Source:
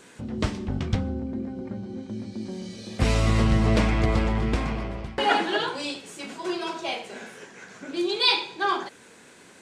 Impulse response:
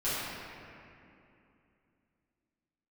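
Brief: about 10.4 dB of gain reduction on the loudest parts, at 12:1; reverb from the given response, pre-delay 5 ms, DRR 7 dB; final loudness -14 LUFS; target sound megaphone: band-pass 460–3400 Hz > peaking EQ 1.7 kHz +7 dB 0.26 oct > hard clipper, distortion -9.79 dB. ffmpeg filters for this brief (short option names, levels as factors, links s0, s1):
-filter_complex "[0:a]acompressor=threshold=0.0447:ratio=12,asplit=2[s0][s1];[1:a]atrim=start_sample=2205,adelay=5[s2];[s1][s2]afir=irnorm=-1:irlink=0,volume=0.15[s3];[s0][s3]amix=inputs=2:normalize=0,highpass=460,lowpass=3400,equalizer=f=1700:t=o:w=0.26:g=7,asoftclip=type=hard:threshold=0.0282,volume=15.8"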